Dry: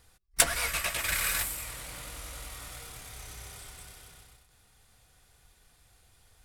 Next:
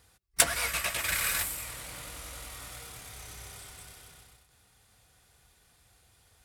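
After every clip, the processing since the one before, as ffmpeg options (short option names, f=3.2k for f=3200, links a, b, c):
-af "highpass=54"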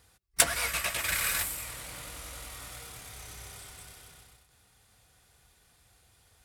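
-af anull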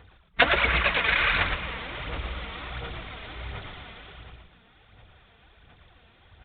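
-filter_complex "[0:a]aphaser=in_gain=1:out_gain=1:delay=4.5:decay=0.55:speed=1.4:type=sinusoidal,asplit=2[a][b];[b]asplit=4[c][d][e][f];[c]adelay=113,afreqshift=-120,volume=-5.5dB[g];[d]adelay=226,afreqshift=-240,volume=-15.7dB[h];[e]adelay=339,afreqshift=-360,volume=-25.8dB[i];[f]adelay=452,afreqshift=-480,volume=-36dB[j];[g][h][i][j]amix=inputs=4:normalize=0[k];[a][k]amix=inputs=2:normalize=0,aresample=8000,aresample=44100,volume=7dB"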